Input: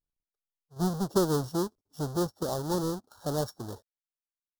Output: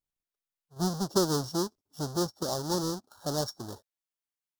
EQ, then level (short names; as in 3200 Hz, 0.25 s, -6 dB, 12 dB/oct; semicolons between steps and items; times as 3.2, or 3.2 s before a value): low shelf 100 Hz -6.5 dB; dynamic EQ 5400 Hz, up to +8 dB, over -56 dBFS, Q 1.6; bell 470 Hz -4.5 dB 0.21 oct; 0.0 dB